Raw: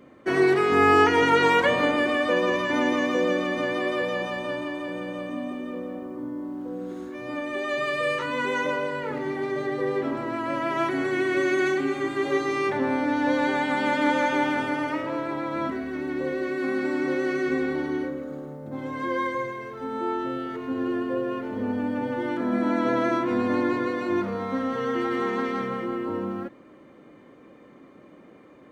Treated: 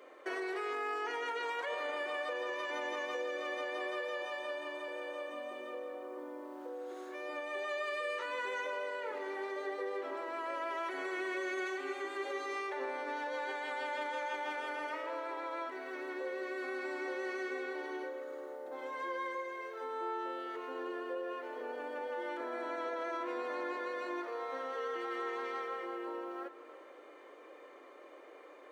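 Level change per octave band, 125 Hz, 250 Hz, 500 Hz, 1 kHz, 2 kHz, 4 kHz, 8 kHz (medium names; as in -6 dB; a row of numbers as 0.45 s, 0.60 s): under -40 dB, -20.5 dB, -12.5 dB, -12.0 dB, -11.5 dB, -12.0 dB, -11.5 dB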